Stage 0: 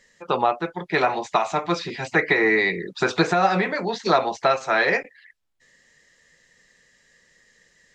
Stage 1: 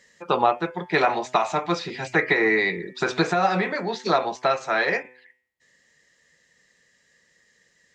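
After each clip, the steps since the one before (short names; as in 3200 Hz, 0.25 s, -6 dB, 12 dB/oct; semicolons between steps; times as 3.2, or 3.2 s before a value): vocal rider within 4 dB 2 s; HPF 60 Hz; de-hum 126.3 Hz, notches 28; gain -1.5 dB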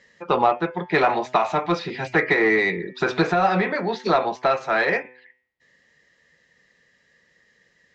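in parallel at -6.5 dB: hard clip -20 dBFS, distortion -8 dB; on the sum: air absorption 140 m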